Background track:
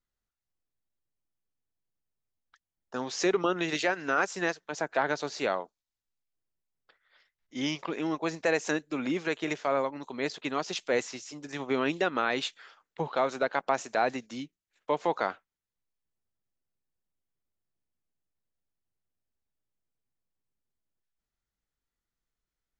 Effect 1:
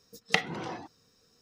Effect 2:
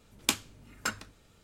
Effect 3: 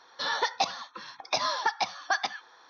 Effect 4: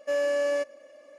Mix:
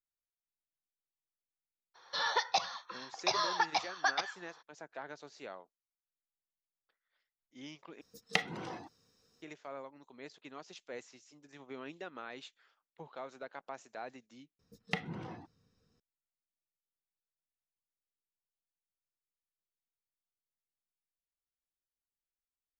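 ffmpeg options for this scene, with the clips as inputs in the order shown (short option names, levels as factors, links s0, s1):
-filter_complex "[1:a]asplit=2[s0][s1];[0:a]volume=0.133[s2];[3:a]equalizer=f=260:w=2.9:g=-12[s3];[s1]bass=f=250:g=10,treble=f=4000:g=-8[s4];[s2]asplit=3[s5][s6][s7];[s5]atrim=end=8.014[s8];[s0]atrim=end=1.41,asetpts=PTS-STARTPTS,volume=0.531[s9];[s6]atrim=start=9.416:end=14.594[s10];[s4]atrim=end=1.41,asetpts=PTS-STARTPTS,volume=0.316[s11];[s7]atrim=start=15.996[s12];[s3]atrim=end=2.69,asetpts=PTS-STARTPTS,volume=0.668,afade=t=in:d=0.02,afade=t=out:st=2.67:d=0.02,adelay=1940[s13];[s8][s9]acrossfade=d=0.004:c1=hsin:c2=hsin[s14];[s14][s10]acrossfade=d=0.004:c1=hsin:c2=hsin[s15];[s15][s11]acrossfade=d=0.004:c1=hsin:c2=hsin[s16];[s16][s12]acrossfade=d=0.004:c1=hsin:c2=hsin[s17];[s17][s13]amix=inputs=2:normalize=0"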